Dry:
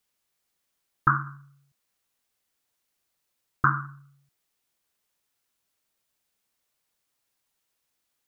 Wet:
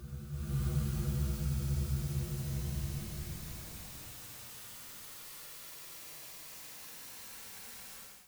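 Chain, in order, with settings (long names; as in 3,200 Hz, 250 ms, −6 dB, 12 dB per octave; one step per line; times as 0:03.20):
sub-octave generator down 1 octave, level −1 dB
extreme stretch with random phases 24×, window 0.10 s, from 0:01.59
automatic gain control gain up to 15 dB
level +15 dB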